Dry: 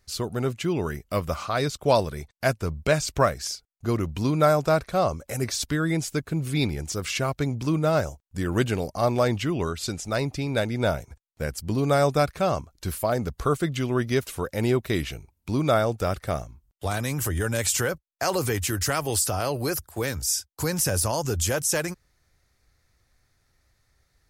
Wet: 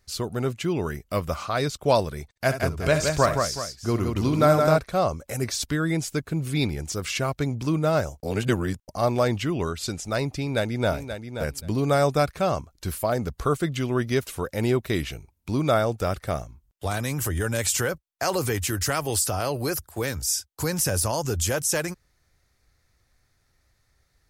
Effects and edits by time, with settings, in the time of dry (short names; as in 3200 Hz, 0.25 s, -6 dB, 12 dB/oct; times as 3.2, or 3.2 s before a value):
2.3–4.78 tapped delay 58/65/68/170/374 ms -20/-18.5/-11.5/-4.5/-12.5 dB
8.23–8.88 reverse
10.38–10.91 echo throw 0.53 s, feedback 15%, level -9 dB